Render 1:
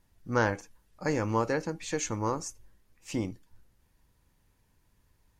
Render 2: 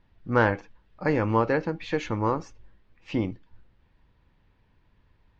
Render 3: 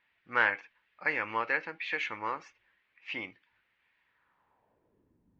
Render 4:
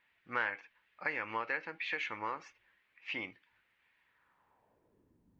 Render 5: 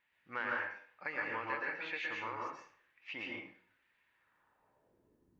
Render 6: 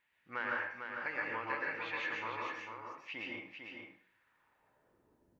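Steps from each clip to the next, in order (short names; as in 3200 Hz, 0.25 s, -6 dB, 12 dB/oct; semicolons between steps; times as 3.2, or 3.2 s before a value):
LPF 3700 Hz 24 dB/oct; gain +5 dB
band-pass sweep 2200 Hz -> 230 Hz, 4.03–5.24; gain +6.5 dB
compressor 2:1, threshold -36 dBFS, peak gain reduction 9 dB
plate-style reverb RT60 0.53 s, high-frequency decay 0.75×, pre-delay 0.105 s, DRR -2 dB; gain -5.5 dB
echo 0.45 s -6 dB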